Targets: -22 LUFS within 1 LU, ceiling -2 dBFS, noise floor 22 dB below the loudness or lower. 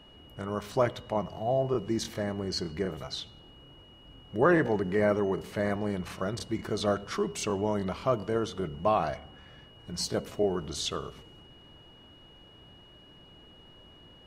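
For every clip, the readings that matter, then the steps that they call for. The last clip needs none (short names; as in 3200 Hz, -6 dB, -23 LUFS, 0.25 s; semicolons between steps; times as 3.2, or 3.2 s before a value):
steady tone 2900 Hz; tone level -55 dBFS; loudness -30.5 LUFS; peak -11.0 dBFS; loudness target -22.0 LUFS
-> notch 2900 Hz, Q 30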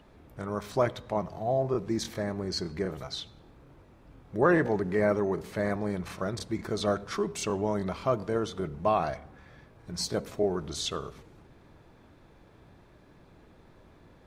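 steady tone none; loudness -30.5 LUFS; peak -11.0 dBFS; loudness target -22.0 LUFS
-> gain +8.5 dB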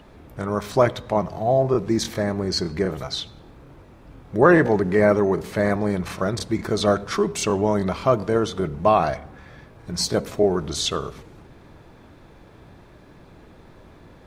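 loudness -22.0 LUFS; peak -2.5 dBFS; noise floor -49 dBFS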